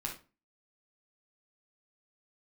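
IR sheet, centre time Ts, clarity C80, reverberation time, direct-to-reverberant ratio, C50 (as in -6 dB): 21 ms, 14.5 dB, 0.30 s, -1.0 dB, 7.0 dB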